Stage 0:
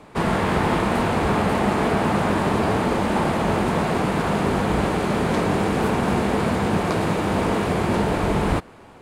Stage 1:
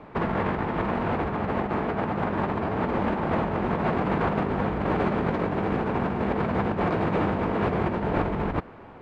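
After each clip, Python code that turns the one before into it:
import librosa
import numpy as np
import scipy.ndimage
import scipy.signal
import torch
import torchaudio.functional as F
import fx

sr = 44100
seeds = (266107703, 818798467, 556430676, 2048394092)

y = scipy.signal.sosfilt(scipy.signal.butter(2, 2200.0, 'lowpass', fs=sr, output='sos'), x)
y = fx.over_compress(y, sr, threshold_db=-23.0, ratio=-0.5)
y = y * 10.0 ** (-2.0 / 20.0)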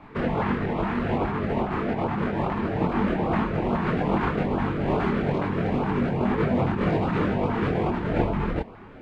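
y = fx.chorus_voices(x, sr, voices=6, hz=0.65, base_ms=25, depth_ms=4.5, mix_pct=50)
y = fx.filter_lfo_notch(y, sr, shape='saw_up', hz=2.4, low_hz=430.0, high_hz=2000.0, q=1.4)
y = y * 10.0 ** (5.0 / 20.0)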